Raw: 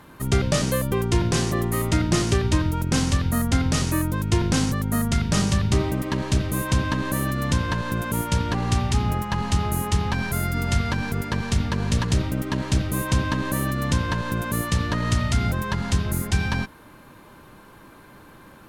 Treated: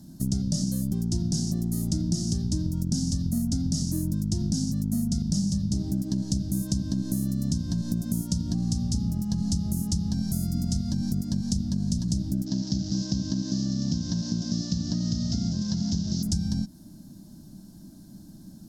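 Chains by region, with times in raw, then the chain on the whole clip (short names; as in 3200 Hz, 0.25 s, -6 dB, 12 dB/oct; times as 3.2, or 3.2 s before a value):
12.46–16.23 delta modulation 32 kbps, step -26.5 dBFS + HPF 140 Hz 6 dB/oct
whole clip: EQ curve 120 Hz 0 dB, 190 Hz +10 dB, 320 Hz -1 dB, 460 Hz -24 dB, 660 Hz -8 dB, 1100 Hz -28 dB, 1600 Hz -22 dB, 2300 Hz -30 dB, 5200 Hz +7 dB, 11000 Hz -1 dB; compressor, threshold -23 dBFS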